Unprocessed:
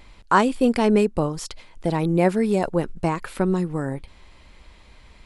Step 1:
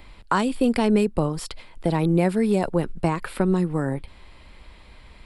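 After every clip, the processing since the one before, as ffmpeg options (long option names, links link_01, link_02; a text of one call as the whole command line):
ffmpeg -i in.wav -filter_complex "[0:a]equalizer=frequency=6300:width_type=o:width=0.34:gain=-11,acrossover=split=200|3000[link_01][link_02][link_03];[link_02]acompressor=threshold=-21dB:ratio=6[link_04];[link_01][link_04][link_03]amix=inputs=3:normalize=0,volume=2dB" out.wav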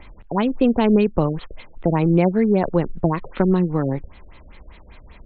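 ffmpeg -i in.wav -af "afftfilt=real='re*lt(b*sr/1024,640*pow(4500/640,0.5+0.5*sin(2*PI*5.1*pts/sr)))':imag='im*lt(b*sr/1024,640*pow(4500/640,0.5+0.5*sin(2*PI*5.1*pts/sr)))':win_size=1024:overlap=0.75,volume=3.5dB" out.wav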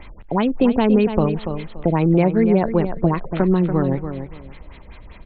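ffmpeg -i in.wav -filter_complex "[0:a]aecho=1:1:286|572|858:0.316|0.0664|0.0139,asplit=2[link_01][link_02];[link_02]alimiter=limit=-12.5dB:level=0:latency=1:release=440,volume=2dB[link_03];[link_01][link_03]amix=inputs=2:normalize=0,volume=-4dB" out.wav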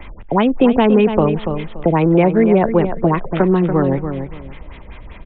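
ffmpeg -i in.wav -filter_complex "[0:a]acrossover=split=250|560[link_01][link_02][link_03];[link_01]asoftclip=type=tanh:threshold=-23.5dB[link_04];[link_04][link_02][link_03]amix=inputs=3:normalize=0,aresample=8000,aresample=44100,volume=5.5dB" out.wav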